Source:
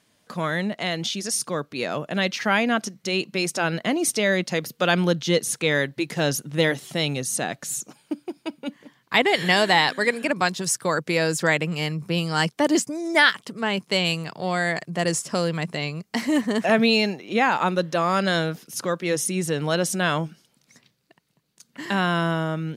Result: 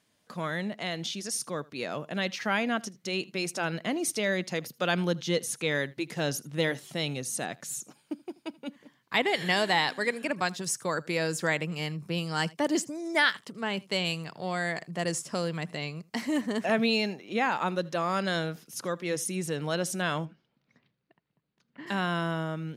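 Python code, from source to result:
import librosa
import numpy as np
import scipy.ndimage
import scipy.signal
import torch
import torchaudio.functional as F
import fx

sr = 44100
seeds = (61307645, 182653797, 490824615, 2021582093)

y = fx.air_absorb(x, sr, metres=330.0, at=(20.24, 21.86), fade=0.02)
y = y + 10.0 ** (-23.5 / 20.0) * np.pad(y, (int(80 * sr / 1000.0), 0))[:len(y)]
y = F.gain(torch.from_numpy(y), -7.0).numpy()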